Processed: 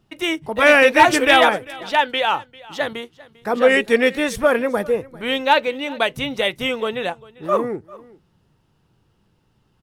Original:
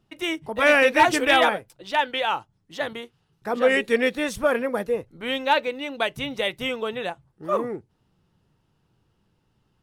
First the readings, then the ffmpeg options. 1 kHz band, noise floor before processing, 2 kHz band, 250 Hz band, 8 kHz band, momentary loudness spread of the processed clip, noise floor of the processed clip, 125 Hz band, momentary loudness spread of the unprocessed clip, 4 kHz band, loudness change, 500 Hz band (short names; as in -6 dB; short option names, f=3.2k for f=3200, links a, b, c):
+5.0 dB, -70 dBFS, +5.0 dB, +5.0 dB, +5.0 dB, 14 LU, -63 dBFS, +5.0 dB, 15 LU, +5.0 dB, +5.0 dB, +5.0 dB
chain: -af "aecho=1:1:397:0.0841,volume=5dB"